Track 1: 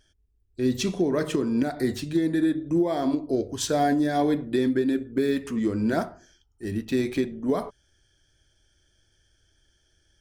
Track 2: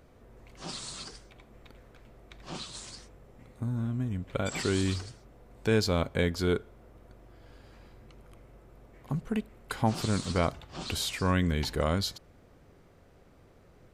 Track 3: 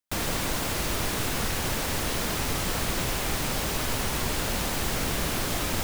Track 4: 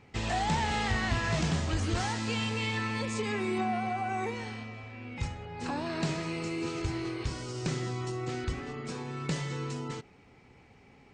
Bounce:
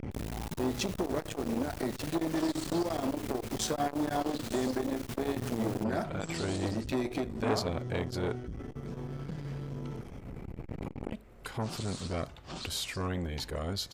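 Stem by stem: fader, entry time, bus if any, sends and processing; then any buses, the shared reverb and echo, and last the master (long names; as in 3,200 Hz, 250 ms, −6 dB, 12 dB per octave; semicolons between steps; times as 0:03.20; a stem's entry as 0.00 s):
+2.5 dB, 0.00 s, bus A, no send, no processing
−2.5 dB, 1.75 s, no bus, no send, upward compression, threshold −33 dBFS
−8.0 dB, 0.00 s, bus A, no send, no processing
−9.0 dB, 0.00 s, muted 0:01.78–0:02.72, bus A, no send, spectral tilt −4 dB per octave; envelope flattener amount 70%; automatic ducking −12 dB, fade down 0.70 s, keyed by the first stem
bus A: 0.0 dB, downward compressor 2.5 to 1, threshold −29 dBFS, peak gain reduction 9 dB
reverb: not used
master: saturating transformer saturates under 880 Hz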